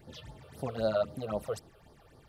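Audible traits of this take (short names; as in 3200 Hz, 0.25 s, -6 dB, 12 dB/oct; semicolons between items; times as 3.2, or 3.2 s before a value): phasing stages 8, 3.8 Hz, lowest notch 240–2600 Hz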